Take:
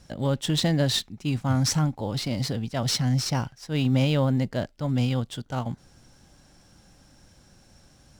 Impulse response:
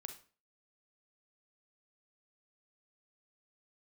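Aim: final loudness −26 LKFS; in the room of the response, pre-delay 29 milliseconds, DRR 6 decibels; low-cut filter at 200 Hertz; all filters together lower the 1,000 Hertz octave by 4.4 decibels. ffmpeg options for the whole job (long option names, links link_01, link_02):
-filter_complex "[0:a]highpass=200,equalizer=frequency=1000:width_type=o:gain=-6,asplit=2[link_01][link_02];[1:a]atrim=start_sample=2205,adelay=29[link_03];[link_02][link_03]afir=irnorm=-1:irlink=0,volume=-2dB[link_04];[link_01][link_04]amix=inputs=2:normalize=0,volume=2dB"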